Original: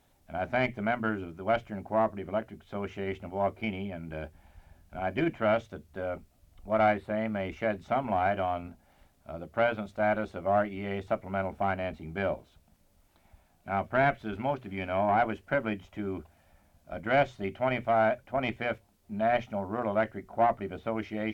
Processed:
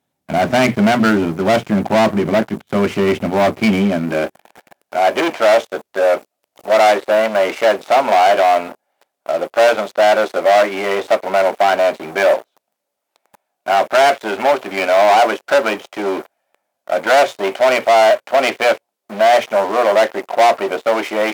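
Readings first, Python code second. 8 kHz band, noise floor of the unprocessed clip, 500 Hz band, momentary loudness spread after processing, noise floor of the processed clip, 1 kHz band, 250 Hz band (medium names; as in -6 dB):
no reading, -66 dBFS, +16.5 dB, 10 LU, -77 dBFS, +15.5 dB, +14.0 dB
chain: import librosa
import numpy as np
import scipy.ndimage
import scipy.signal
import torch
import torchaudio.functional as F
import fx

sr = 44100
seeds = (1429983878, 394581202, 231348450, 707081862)

y = fx.leveller(x, sr, passes=5)
y = fx.filter_sweep_highpass(y, sr, from_hz=160.0, to_hz=510.0, start_s=3.7, end_s=4.64, q=1.3)
y = y * 10.0 ** (3.5 / 20.0)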